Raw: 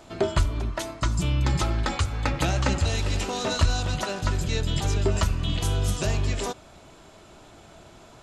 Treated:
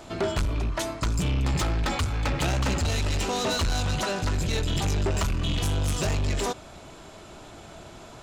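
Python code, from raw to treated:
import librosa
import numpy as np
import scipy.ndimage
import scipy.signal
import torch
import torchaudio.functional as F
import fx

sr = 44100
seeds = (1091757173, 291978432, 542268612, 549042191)

y = fx.rattle_buzz(x, sr, strikes_db=-24.0, level_db=-27.0)
y = 10.0 ** (-26.0 / 20.0) * np.tanh(y / 10.0 ** (-26.0 / 20.0))
y = F.gain(torch.from_numpy(y), 4.5).numpy()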